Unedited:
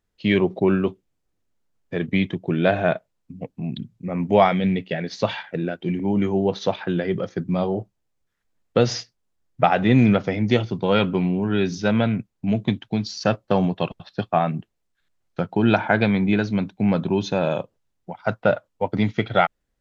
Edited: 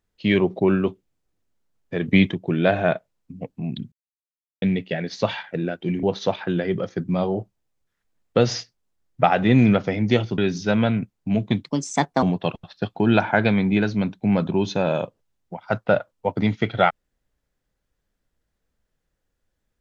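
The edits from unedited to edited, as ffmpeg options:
-filter_complex "[0:a]asplit=10[a][b][c][d][e][f][g][h][i][j];[a]atrim=end=2.062[k];[b]atrim=start=2.058:end=2.322,asetpts=PTS-STARTPTS,volume=5dB[l];[c]atrim=start=2.318:end=3.92,asetpts=PTS-STARTPTS,afade=t=out:st=1.598:d=0.004:c=hsin[m];[d]atrim=start=3.92:end=4.62,asetpts=PTS-STARTPTS,volume=0[n];[e]atrim=start=4.62:end=6.032,asetpts=PTS-STARTPTS,afade=t=in:d=0.004:c=hsin[o];[f]atrim=start=6.428:end=10.782[p];[g]atrim=start=11.548:end=12.814[q];[h]atrim=start=12.81:end=13.59,asetpts=PTS-STARTPTS,asetrate=58653,aresample=44100,atrim=end_sample=25863,asetpts=PTS-STARTPTS[r];[i]atrim=start=13.586:end=14.322[s];[j]atrim=start=15.518[t];[k][l]acrossfade=d=0.004:c1=hsin:c2=hsin[u];[m][n][o]concat=n=3:v=0:a=1[v];[u][v]acrossfade=d=0.004:c1=hsin:c2=hsin[w];[w][p]acrossfade=d=0.004:c1=hsin:c2=hsin[x];[x][q]acrossfade=d=0.004:c1=hsin:c2=hsin[y];[y][r]acrossfade=d=0.004:c1=hsin:c2=hsin[z];[z][s]acrossfade=d=0.004:c1=hsin:c2=hsin[aa];[aa][t]acrossfade=d=0.004:c1=hsin:c2=hsin"

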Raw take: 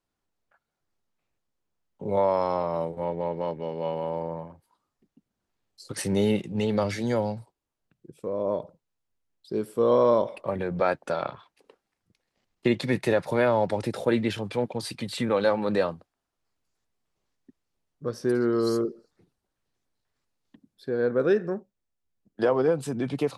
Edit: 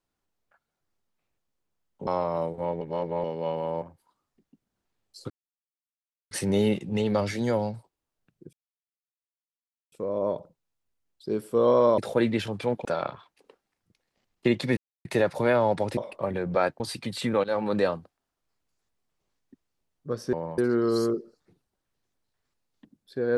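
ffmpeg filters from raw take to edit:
-filter_complex "[0:a]asplit=15[a][b][c][d][e][f][g][h][i][j][k][l][m][n][o];[a]atrim=end=2.072[p];[b]atrim=start=2.458:end=3.202[q];[c]atrim=start=3.198:end=3.632,asetpts=PTS-STARTPTS,areverse[r];[d]atrim=start=3.628:end=4.212[s];[e]atrim=start=4.458:end=5.94,asetpts=PTS-STARTPTS,afade=t=out:st=1.478:d=0.004:c=hsin,apad=pad_dur=1.01[t];[f]atrim=start=5.94:end=8.16,asetpts=PTS-STARTPTS,afade=t=in:d=0.004:c=hsin,afade=t=out:st=2.216:d=0.004:c=hsin,apad=pad_dur=1.39[u];[g]atrim=start=8.16:end=10.222,asetpts=PTS-STARTPTS,afade=t=in:d=0.004:c=hsin[v];[h]atrim=start=13.888:end=14.762[w];[i]atrim=start=11.048:end=12.97,asetpts=PTS-STARTPTS,afade=t=out:st=1.918:d=0.004:c=hsin,apad=pad_dur=0.28[x];[j]atrim=start=12.97:end=13.892,asetpts=PTS-STARTPTS,afade=t=in:d=0.004:c=hsin[y];[k]atrim=start=10.218:end=11.052[z];[l]atrim=start=14.758:end=15.4,asetpts=PTS-STARTPTS,afade=t=out:st=0.638:d=0.004:c=hsin:silence=0.133352[aa];[m]atrim=start=15.4:end=18.292,asetpts=PTS-STARTPTS,afade=t=in:d=0.25:c=qsin:silence=0.133352[ab];[n]atrim=start=4.208:end=4.462[ac];[o]atrim=start=18.288[ad];[p][q]acrossfade=d=0.004:c1=hsin:c2=hsin[ae];[ae][r]acrossfade=d=0.004:c1=hsin:c2=hsin[af];[af][s]acrossfade=d=0.004:c1=hsin:c2=hsin[ag];[t][u][v]concat=n=3:v=0:a=1[ah];[ag][ah]acrossfade=d=0.004:c1=hsin:c2=hsin[ai];[ai][w]acrossfade=d=0.004:c1=hsin:c2=hsin[aj];[x][y]concat=n=2:v=0:a=1[ak];[aj][ak]acrossfade=d=0.004:c1=hsin:c2=hsin[al];[al][z]acrossfade=d=0.004:c1=hsin:c2=hsin[am];[aa][ab]concat=n=2:v=0:a=1[an];[am][an]acrossfade=d=0.004:c1=hsin:c2=hsin[ao];[ao][ac]acrossfade=d=0.004:c1=hsin:c2=hsin[ap];[ap][ad]acrossfade=d=0.004:c1=hsin:c2=hsin"

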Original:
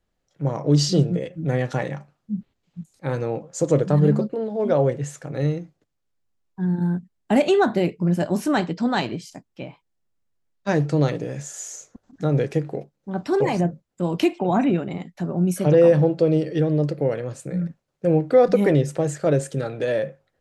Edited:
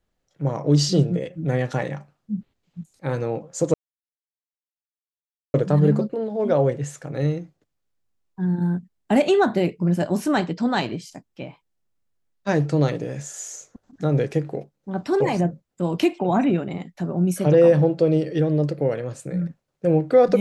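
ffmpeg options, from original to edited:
-filter_complex "[0:a]asplit=2[a][b];[a]atrim=end=3.74,asetpts=PTS-STARTPTS,afade=t=out:st=3.736:d=0.004:c=hsin,apad=pad_dur=1.8[c];[b]atrim=start=3.74,asetpts=PTS-STARTPTS,afade=t=in:d=0.004:c=hsin[d];[c][d]concat=n=2:v=0:a=1"

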